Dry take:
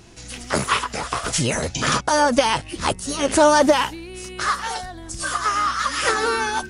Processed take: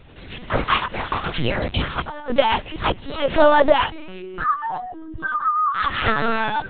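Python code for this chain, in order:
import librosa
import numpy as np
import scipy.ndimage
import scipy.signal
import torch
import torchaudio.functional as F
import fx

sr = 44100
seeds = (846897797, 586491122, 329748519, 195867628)

y = fx.spec_expand(x, sr, power=2.1, at=(4.21, 5.75))
y = fx.dynamic_eq(y, sr, hz=290.0, q=7.3, threshold_db=-39.0, ratio=4.0, max_db=-7)
y = fx.over_compress(y, sr, threshold_db=-25.0, ratio=-0.5, at=(1.74, 2.3))
y = fx.echo_thinned(y, sr, ms=274, feedback_pct=59, hz=1100.0, wet_db=-24.0)
y = fx.lpc_vocoder(y, sr, seeds[0], excitation='pitch_kept', order=10)
y = y * librosa.db_to_amplitude(1.5)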